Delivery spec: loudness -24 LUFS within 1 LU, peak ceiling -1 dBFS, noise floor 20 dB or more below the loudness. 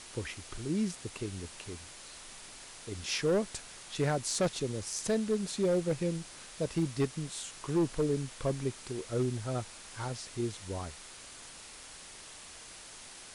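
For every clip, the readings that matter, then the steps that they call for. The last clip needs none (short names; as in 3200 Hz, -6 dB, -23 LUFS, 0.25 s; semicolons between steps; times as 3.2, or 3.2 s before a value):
clipped 0.8%; flat tops at -23.0 dBFS; noise floor -50 dBFS; noise floor target -54 dBFS; loudness -34.0 LUFS; peak -23.0 dBFS; loudness target -24.0 LUFS
-> clip repair -23 dBFS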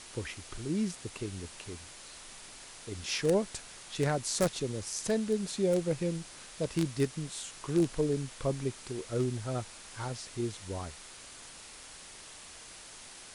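clipped 0.0%; noise floor -50 dBFS; noise floor target -54 dBFS
-> noise print and reduce 6 dB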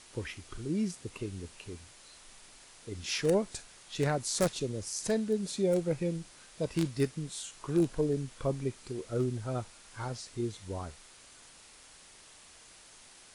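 noise floor -56 dBFS; loudness -33.5 LUFS; peak -14.0 dBFS; loudness target -24.0 LUFS
-> gain +9.5 dB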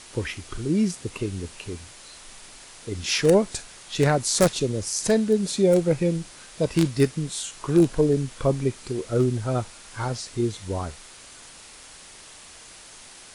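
loudness -24.0 LUFS; peak -4.5 dBFS; noise floor -46 dBFS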